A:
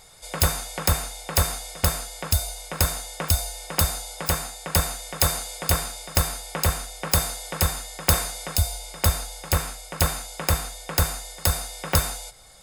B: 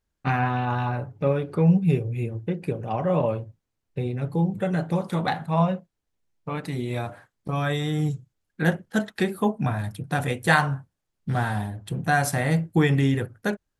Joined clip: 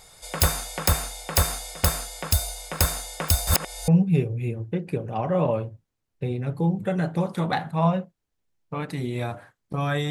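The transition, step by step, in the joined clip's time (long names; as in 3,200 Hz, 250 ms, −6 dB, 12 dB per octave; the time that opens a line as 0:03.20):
A
0:03.47–0:03.88: reverse
0:03.88: continue with B from 0:01.63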